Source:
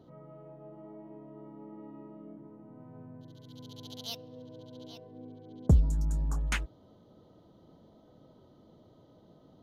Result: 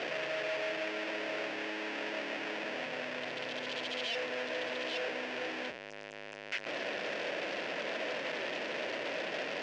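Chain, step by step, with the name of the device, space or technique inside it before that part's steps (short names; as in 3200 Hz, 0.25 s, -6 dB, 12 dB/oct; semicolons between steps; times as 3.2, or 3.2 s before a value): home computer beeper (infinite clipping; speaker cabinet 560–4700 Hz, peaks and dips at 570 Hz +4 dB, 850 Hz -6 dB, 1200 Hz -10 dB, 1800 Hz +5 dB, 2600 Hz +6 dB, 4000 Hz -6 dB); gain +2.5 dB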